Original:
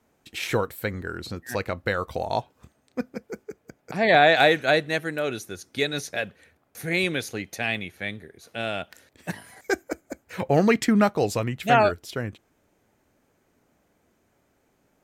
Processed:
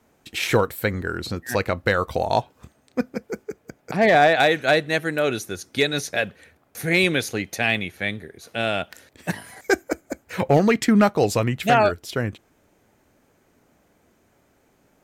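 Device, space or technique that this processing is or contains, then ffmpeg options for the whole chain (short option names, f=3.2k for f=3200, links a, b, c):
limiter into clipper: -filter_complex "[0:a]asplit=3[a][b][c];[a]afade=t=out:st=3.95:d=0.02[d];[b]highshelf=f=3.7k:g=-10.5,afade=t=in:st=3.95:d=0.02,afade=t=out:st=4.39:d=0.02[e];[c]afade=t=in:st=4.39:d=0.02[f];[d][e][f]amix=inputs=3:normalize=0,alimiter=limit=-11dB:level=0:latency=1:release=499,asoftclip=type=hard:threshold=-13.5dB,volume=5.5dB"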